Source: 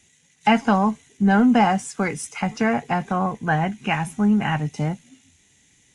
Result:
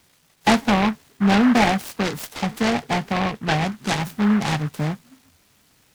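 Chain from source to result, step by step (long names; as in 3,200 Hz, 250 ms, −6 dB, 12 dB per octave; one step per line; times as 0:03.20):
short delay modulated by noise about 1,200 Hz, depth 0.13 ms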